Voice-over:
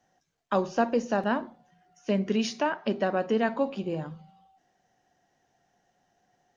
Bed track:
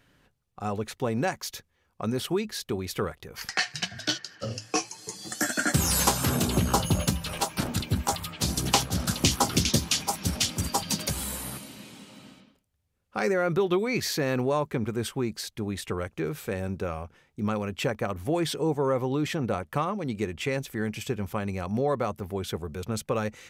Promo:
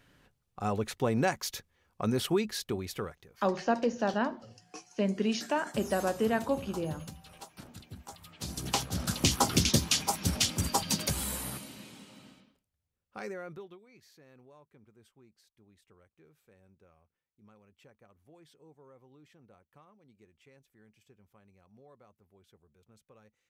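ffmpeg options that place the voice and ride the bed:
-filter_complex "[0:a]adelay=2900,volume=0.708[s0];[1:a]volume=7.94,afade=t=out:st=2.43:d=0.96:silence=0.105925,afade=t=in:st=8.15:d=1.39:silence=0.11885,afade=t=out:st=11.35:d=2.44:silence=0.0316228[s1];[s0][s1]amix=inputs=2:normalize=0"

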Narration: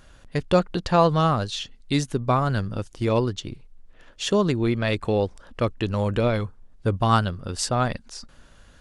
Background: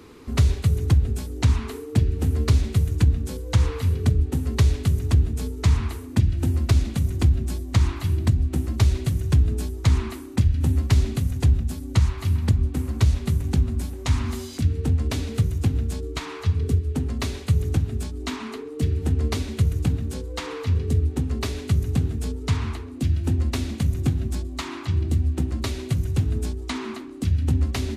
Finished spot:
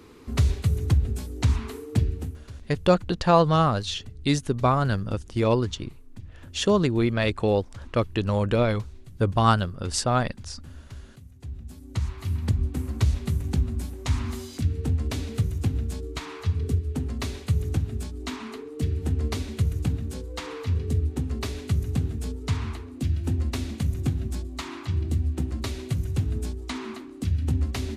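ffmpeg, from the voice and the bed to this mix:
-filter_complex "[0:a]adelay=2350,volume=1[s0];[1:a]volume=7.08,afade=t=out:st=2.04:d=0.35:silence=0.0944061,afade=t=in:st=11.4:d=1.22:silence=0.1[s1];[s0][s1]amix=inputs=2:normalize=0"

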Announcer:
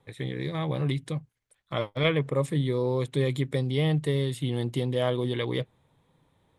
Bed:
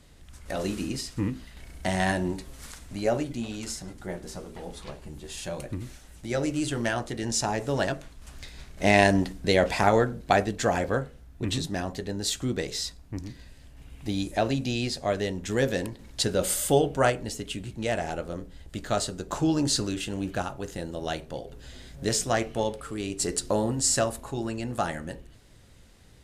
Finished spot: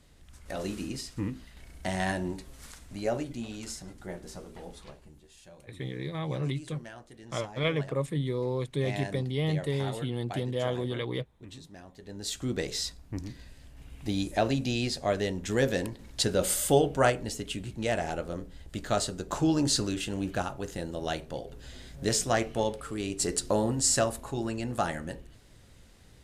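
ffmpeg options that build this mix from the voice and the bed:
-filter_complex "[0:a]adelay=5600,volume=0.631[s0];[1:a]volume=4.22,afade=t=out:st=4.6:d=0.69:silence=0.211349,afade=t=in:st=11.96:d=0.69:silence=0.141254[s1];[s0][s1]amix=inputs=2:normalize=0"

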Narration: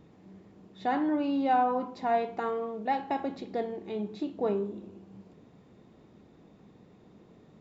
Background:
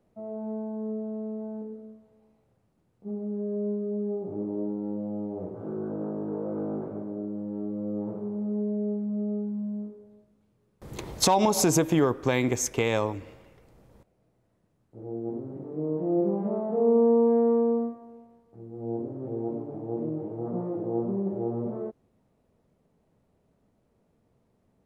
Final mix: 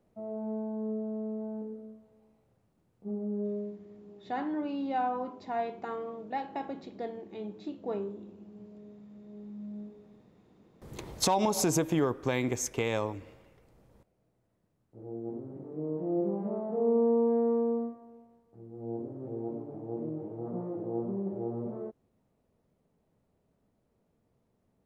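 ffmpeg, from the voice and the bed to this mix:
-filter_complex "[0:a]adelay=3450,volume=0.531[s0];[1:a]volume=5.62,afade=t=out:st=3.46:d=0.32:silence=0.1,afade=t=in:st=9.26:d=0.76:silence=0.149624[s1];[s0][s1]amix=inputs=2:normalize=0"

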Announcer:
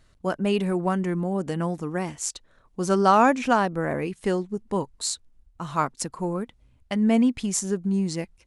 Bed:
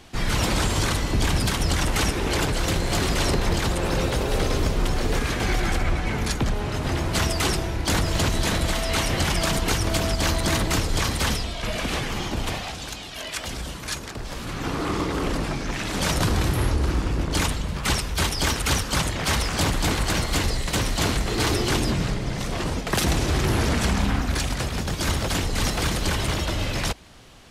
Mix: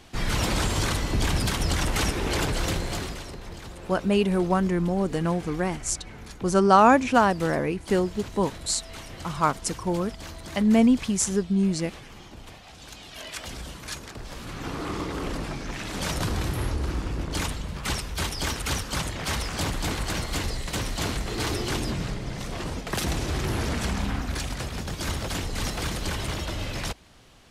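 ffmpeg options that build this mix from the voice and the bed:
-filter_complex "[0:a]adelay=3650,volume=1.19[s0];[1:a]volume=2.82,afade=t=out:st=2.64:d=0.6:silence=0.188365,afade=t=in:st=12.63:d=0.54:silence=0.266073[s1];[s0][s1]amix=inputs=2:normalize=0"

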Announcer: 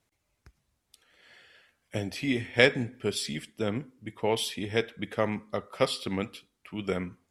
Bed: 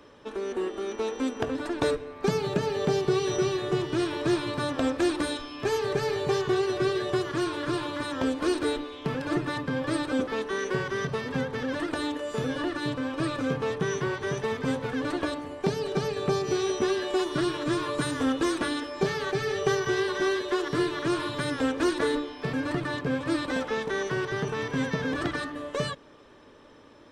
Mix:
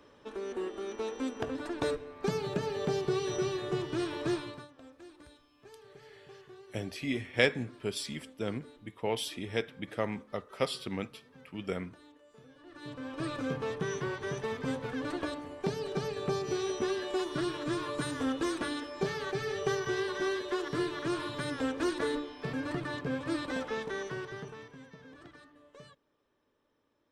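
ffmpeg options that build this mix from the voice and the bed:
-filter_complex "[0:a]adelay=4800,volume=0.562[s0];[1:a]volume=5.62,afade=t=out:st=4.29:d=0.39:silence=0.0891251,afade=t=in:st=12.64:d=0.69:silence=0.0891251,afade=t=out:st=23.77:d=1.01:silence=0.133352[s1];[s0][s1]amix=inputs=2:normalize=0"

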